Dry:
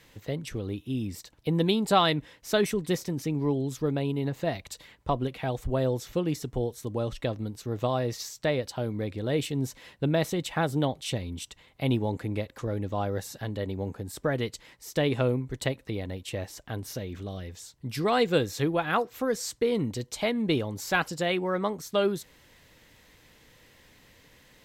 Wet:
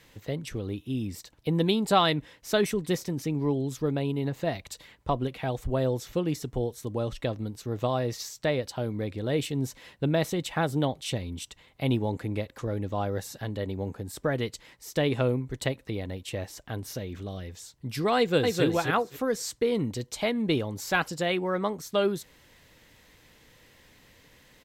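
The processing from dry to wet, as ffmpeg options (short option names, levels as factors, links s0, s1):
-filter_complex "[0:a]asplit=2[s0][s1];[s1]afade=t=in:st=18.17:d=0.01,afade=t=out:st=18.64:d=0.01,aecho=0:1:260|520|780:0.749894|0.112484|0.0168726[s2];[s0][s2]amix=inputs=2:normalize=0"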